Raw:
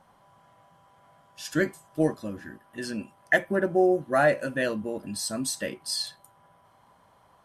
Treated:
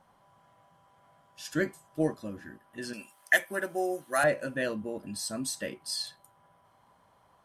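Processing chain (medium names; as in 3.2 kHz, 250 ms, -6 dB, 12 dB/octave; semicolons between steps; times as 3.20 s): 2.93–4.24 s: tilt EQ +4.5 dB/octave; trim -4 dB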